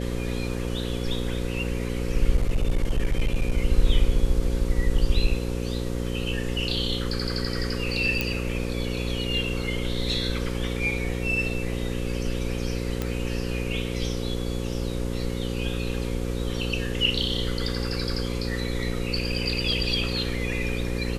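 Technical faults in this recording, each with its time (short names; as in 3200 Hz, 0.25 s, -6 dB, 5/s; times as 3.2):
buzz 60 Hz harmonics 9 -29 dBFS
2.35–3.57 clipped -17.5 dBFS
8.21 pop
13.02 pop -13 dBFS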